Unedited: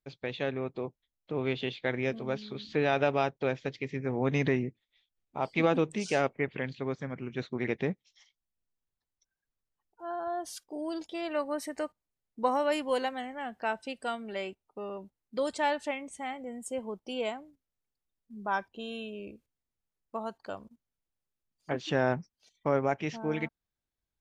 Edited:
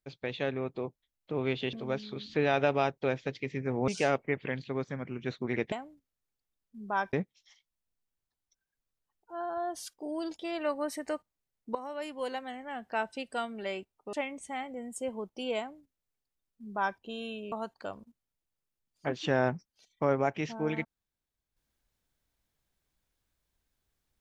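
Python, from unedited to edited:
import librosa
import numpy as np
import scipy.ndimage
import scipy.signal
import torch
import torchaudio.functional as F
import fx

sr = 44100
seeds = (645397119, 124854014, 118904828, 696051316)

y = fx.edit(x, sr, fx.cut(start_s=1.73, length_s=0.39),
    fx.cut(start_s=4.27, length_s=1.72),
    fx.fade_in_from(start_s=12.45, length_s=1.25, floor_db=-15.5),
    fx.cut(start_s=14.83, length_s=1.0),
    fx.duplicate(start_s=17.28, length_s=1.41, to_s=7.83),
    fx.cut(start_s=19.22, length_s=0.94), tone=tone)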